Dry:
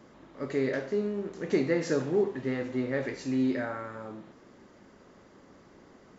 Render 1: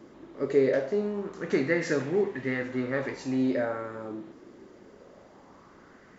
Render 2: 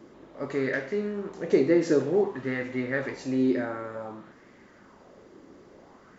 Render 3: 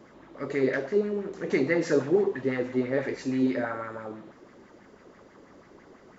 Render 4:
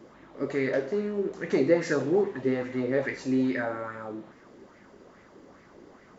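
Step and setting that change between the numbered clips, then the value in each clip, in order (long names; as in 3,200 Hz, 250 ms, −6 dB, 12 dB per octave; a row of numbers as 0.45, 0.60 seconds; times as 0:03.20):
auto-filter bell, speed: 0.23, 0.55, 6.1, 2.4 Hertz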